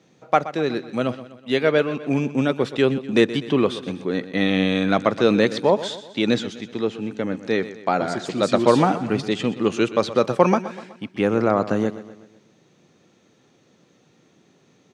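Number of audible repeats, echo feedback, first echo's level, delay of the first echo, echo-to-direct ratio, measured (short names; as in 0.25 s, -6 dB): 4, 49%, -14.5 dB, 0.125 s, -13.5 dB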